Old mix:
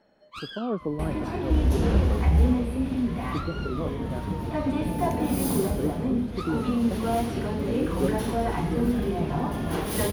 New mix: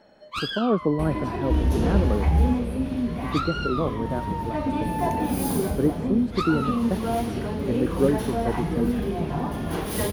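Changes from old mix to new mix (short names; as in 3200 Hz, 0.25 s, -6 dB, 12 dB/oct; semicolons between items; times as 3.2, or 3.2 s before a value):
speech +7.0 dB; first sound +9.5 dB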